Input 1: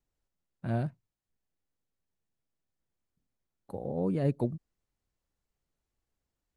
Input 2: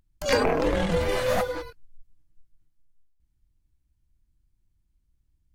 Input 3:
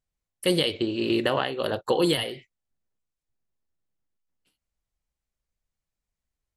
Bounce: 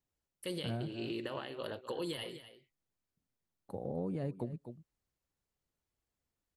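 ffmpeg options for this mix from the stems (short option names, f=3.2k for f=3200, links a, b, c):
-filter_complex "[0:a]highpass=56,volume=-2.5dB,asplit=2[a][b];[b]volume=-15.5dB[c];[2:a]bandreject=f=740:w=12,alimiter=limit=-15dB:level=0:latency=1:release=116,volume=-12.5dB,asplit=2[d][e];[e]volume=-13.5dB[f];[c][f]amix=inputs=2:normalize=0,aecho=0:1:251:1[g];[a][d][g]amix=inputs=3:normalize=0,acompressor=threshold=-33dB:ratio=12"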